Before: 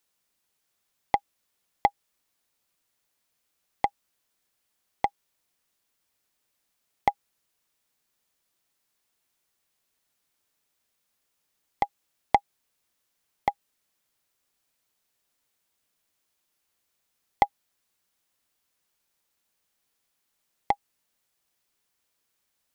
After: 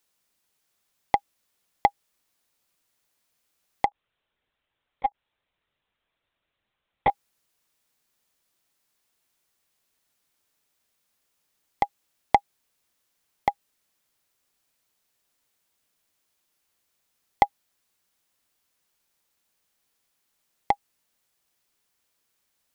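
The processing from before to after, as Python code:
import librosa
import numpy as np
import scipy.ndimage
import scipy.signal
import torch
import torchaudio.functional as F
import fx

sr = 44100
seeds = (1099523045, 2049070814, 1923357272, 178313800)

y = fx.lpc_vocoder(x, sr, seeds[0], excitation='pitch_kept', order=16, at=(3.86, 7.1))
y = y * librosa.db_to_amplitude(2.0)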